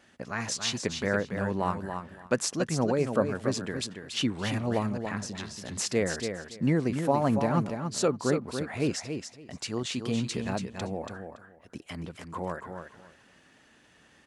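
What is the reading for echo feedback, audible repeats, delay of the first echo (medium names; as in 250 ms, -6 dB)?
18%, 2, 283 ms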